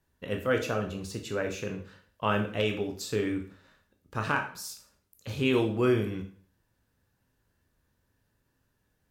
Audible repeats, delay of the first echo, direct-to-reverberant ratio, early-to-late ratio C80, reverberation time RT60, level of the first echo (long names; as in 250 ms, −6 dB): no echo audible, no echo audible, 3.5 dB, 14.0 dB, 0.50 s, no echo audible